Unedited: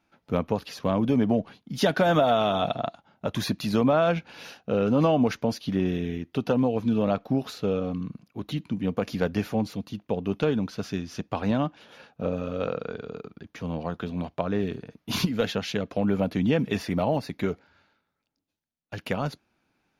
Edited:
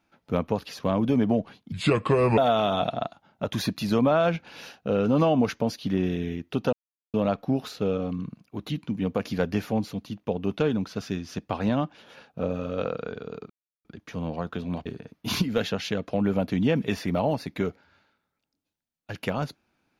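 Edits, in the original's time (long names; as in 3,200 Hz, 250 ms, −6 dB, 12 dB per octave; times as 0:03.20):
0:01.72–0:02.20: play speed 73%
0:06.55–0:06.96: silence
0:13.32: splice in silence 0.35 s
0:14.33–0:14.69: remove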